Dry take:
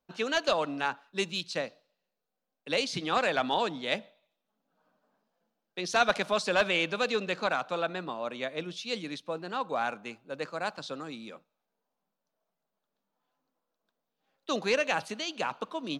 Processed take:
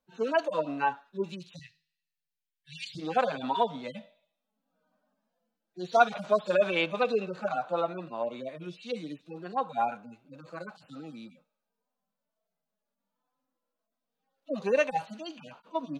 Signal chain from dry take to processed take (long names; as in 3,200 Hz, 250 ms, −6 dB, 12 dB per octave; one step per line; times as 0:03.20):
harmonic-percussive split with one part muted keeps harmonic
0:01.59–0:02.95: Chebyshev band-stop filter 160–1,700 Hz, order 5
dynamic equaliser 830 Hz, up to +7 dB, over −43 dBFS, Q 0.87